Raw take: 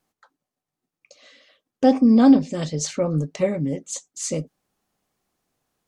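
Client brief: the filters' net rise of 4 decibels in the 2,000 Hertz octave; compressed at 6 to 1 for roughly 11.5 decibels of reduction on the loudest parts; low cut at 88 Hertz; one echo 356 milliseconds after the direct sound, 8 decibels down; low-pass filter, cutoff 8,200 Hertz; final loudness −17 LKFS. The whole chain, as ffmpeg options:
ffmpeg -i in.wav -af "highpass=88,lowpass=8200,equalizer=frequency=2000:width_type=o:gain=5,acompressor=threshold=-21dB:ratio=6,aecho=1:1:356:0.398,volume=10dB" out.wav

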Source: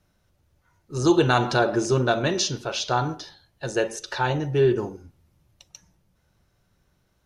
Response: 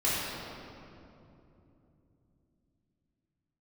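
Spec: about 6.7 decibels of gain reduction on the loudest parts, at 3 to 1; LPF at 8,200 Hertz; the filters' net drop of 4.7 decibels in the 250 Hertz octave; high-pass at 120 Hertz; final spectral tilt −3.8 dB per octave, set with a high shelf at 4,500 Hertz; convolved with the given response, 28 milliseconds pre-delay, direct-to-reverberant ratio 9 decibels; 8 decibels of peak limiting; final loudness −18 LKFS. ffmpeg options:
-filter_complex "[0:a]highpass=120,lowpass=8200,equalizer=frequency=250:width_type=o:gain=-8,highshelf=frequency=4500:gain=6,acompressor=threshold=-26dB:ratio=3,alimiter=limit=-21dB:level=0:latency=1,asplit=2[link_01][link_02];[1:a]atrim=start_sample=2205,adelay=28[link_03];[link_02][link_03]afir=irnorm=-1:irlink=0,volume=-20.5dB[link_04];[link_01][link_04]amix=inputs=2:normalize=0,volume=13.5dB"

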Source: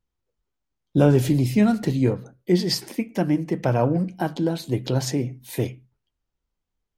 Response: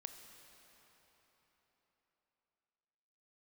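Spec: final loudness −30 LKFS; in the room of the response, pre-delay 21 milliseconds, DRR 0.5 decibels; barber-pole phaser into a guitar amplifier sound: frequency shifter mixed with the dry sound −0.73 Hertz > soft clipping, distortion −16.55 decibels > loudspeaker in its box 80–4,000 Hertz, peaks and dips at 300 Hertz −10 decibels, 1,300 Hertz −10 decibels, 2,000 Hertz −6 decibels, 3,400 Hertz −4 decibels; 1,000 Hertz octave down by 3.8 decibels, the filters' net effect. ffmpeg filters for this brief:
-filter_complex "[0:a]equalizer=frequency=1000:width_type=o:gain=-4,asplit=2[link_01][link_02];[1:a]atrim=start_sample=2205,adelay=21[link_03];[link_02][link_03]afir=irnorm=-1:irlink=0,volume=4dB[link_04];[link_01][link_04]amix=inputs=2:normalize=0,asplit=2[link_05][link_06];[link_06]afreqshift=-0.73[link_07];[link_05][link_07]amix=inputs=2:normalize=1,asoftclip=threshold=-12dB,highpass=80,equalizer=frequency=300:width_type=q:width=4:gain=-10,equalizer=frequency=1300:width_type=q:width=4:gain=-10,equalizer=frequency=2000:width_type=q:width=4:gain=-6,equalizer=frequency=3400:width_type=q:width=4:gain=-4,lowpass=frequency=4000:width=0.5412,lowpass=frequency=4000:width=1.3066,volume=-3dB"

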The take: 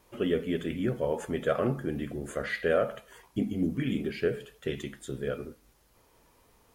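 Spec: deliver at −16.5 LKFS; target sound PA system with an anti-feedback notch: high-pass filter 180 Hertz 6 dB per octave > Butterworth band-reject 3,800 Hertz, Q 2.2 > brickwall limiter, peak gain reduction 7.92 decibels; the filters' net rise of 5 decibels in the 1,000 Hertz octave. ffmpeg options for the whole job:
ffmpeg -i in.wav -af "highpass=frequency=180:poles=1,asuperstop=centerf=3800:order=8:qfactor=2.2,equalizer=frequency=1000:width_type=o:gain=7.5,volume=17dB,alimiter=limit=-3dB:level=0:latency=1" out.wav

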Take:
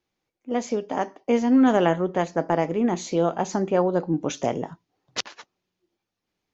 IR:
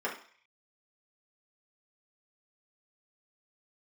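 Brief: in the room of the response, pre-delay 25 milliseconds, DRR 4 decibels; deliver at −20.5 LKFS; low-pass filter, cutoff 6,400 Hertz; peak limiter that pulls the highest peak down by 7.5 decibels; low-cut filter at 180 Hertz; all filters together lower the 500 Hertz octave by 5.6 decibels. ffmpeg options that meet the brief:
-filter_complex "[0:a]highpass=180,lowpass=6400,equalizer=frequency=500:width_type=o:gain=-7,alimiter=limit=-16dB:level=0:latency=1,asplit=2[link_01][link_02];[1:a]atrim=start_sample=2205,adelay=25[link_03];[link_02][link_03]afir=irnorm=-1:irlink=0,volume=-11.5dB[link_04];[link_01][link_04]amix=inputs=2:normalize=0,volume=6.5dB"

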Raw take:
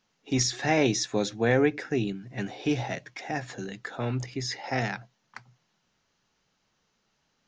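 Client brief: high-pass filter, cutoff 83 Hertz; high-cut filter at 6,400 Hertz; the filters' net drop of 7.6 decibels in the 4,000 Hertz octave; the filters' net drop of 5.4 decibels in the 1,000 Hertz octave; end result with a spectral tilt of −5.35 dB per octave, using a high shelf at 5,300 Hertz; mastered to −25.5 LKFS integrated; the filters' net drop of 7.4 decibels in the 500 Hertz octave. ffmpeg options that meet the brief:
ffmpeg -i in.wav -af "highpass=83,lowpass=6400,equalizer=frequency=500:width_type=o:gain=-8.5,equalizer=frequency=1000:width_type=o:gain=-3,equalizer=frequency=4000:width_type=o:gain=-5,highshelf=frequency=5300:gain=-7,volume=7.5dB" out.wav

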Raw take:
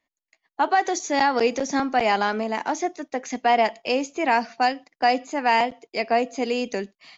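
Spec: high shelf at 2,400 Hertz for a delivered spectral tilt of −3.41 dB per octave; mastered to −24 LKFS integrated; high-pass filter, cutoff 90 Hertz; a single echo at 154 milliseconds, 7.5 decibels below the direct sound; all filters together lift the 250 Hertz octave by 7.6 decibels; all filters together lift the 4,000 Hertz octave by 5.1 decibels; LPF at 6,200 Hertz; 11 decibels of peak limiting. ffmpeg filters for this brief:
ffmpeg -i in.wav -af "highpass=90,lowpass=6200,equalizer=frequency=250:width_type=o:gain=8.5,highshelf=frequency=2400:gain=4,equalizer=frequency=4000:width_type=o:gain=4,alimiter=limit=-16.5dB:level=0:latency=1,aecho=1:1:154:0.422,volume=2dB" out.wav

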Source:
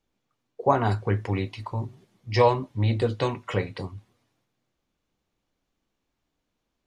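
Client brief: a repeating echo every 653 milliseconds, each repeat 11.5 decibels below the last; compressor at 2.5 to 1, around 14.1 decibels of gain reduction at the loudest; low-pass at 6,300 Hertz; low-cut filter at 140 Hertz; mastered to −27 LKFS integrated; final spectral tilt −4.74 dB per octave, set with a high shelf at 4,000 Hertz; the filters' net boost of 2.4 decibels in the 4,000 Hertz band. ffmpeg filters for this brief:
ffmpeg -i in.wav -af "highpass=140,lowpass=6300,highshelf=frequency=4000:gain=-9,equalizer=frequency=4000:width_type=o:gain=9,acompressor=threshold=-36dB:ratio=2.5,aecho=1:1:653|1306|1959:0.266|0.0718|0.0194,volume=11dB" out.wav

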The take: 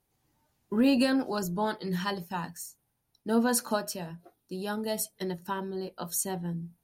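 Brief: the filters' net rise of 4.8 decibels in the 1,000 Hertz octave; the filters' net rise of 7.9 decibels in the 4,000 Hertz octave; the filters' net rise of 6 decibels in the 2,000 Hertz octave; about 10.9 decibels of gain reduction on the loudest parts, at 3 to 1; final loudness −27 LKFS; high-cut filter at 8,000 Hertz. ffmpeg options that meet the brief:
ffmpeg -i in.wav -af "lowpass=8000,equalizer=frequency=1000:width_type=o:gain=4.5,equalizer=frequency=2000:width_type=o:gain=4.5,equalizer=frequency=4000:width_type=o:gain=8.5,acompressor=threshold=-34dB:ratio=3,volume=9.5dB" out.wav

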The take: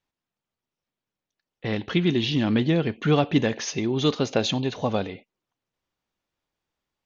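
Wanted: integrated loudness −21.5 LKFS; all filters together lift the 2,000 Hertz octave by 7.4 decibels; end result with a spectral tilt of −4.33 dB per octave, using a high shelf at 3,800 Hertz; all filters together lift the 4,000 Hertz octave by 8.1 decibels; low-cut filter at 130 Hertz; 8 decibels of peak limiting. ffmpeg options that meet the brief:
ffmpeg -i in.wav -af "highpass=130,equalizer=frequency=2000:width_type=o:gain=7.5,highshelf=frequency=3800:gain=-3,equalizer=frequency=4000:width_type=o:gain=9,volume=2.5dB,alimiter=limit=-8.5dB:level=0:latency=1" out.wav

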